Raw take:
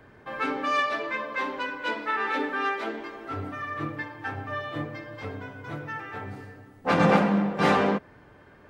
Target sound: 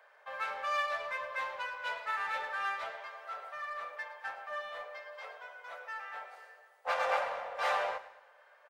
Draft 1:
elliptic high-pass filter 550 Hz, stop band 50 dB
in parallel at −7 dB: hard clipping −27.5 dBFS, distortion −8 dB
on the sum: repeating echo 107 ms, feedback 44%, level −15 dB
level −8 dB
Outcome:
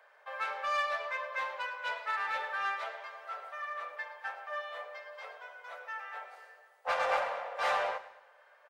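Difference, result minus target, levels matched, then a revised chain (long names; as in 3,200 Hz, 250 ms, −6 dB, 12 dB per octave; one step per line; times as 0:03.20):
hard clipping: distortion −5 dB
elliptic high-pass filter 550 Hz, stop band 50 dB
in parallel at −7 dB: hard clipping −35.5 dBFS, distortion −3 dB
on the sum: repeating echo 107 ms, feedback 44%, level −15 dB
level −8 dB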